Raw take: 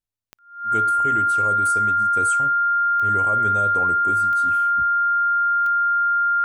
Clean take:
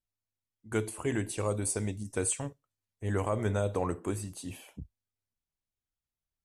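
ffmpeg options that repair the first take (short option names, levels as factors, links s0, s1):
-af "adeclick=t=4,bandreject=f=1400:w=30"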